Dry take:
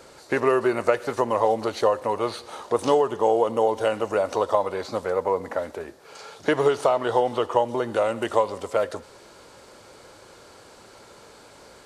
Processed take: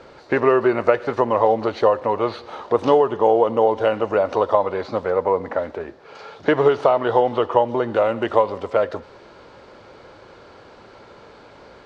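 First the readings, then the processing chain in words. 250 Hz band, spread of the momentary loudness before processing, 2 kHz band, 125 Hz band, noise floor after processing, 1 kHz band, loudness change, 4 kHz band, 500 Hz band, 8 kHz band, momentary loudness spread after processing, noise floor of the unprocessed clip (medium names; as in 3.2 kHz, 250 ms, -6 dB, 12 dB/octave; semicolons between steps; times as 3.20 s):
+4.5 dB, 10 LU, +3.0 dB, +5.0 dB, -46 dBFS, +4.0 dB, +4.5 dB, 0.0 dB, +4.5 dB, under -10 dB, 9 LU, -49 dBFS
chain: distance through air 220 m; trim +5 dB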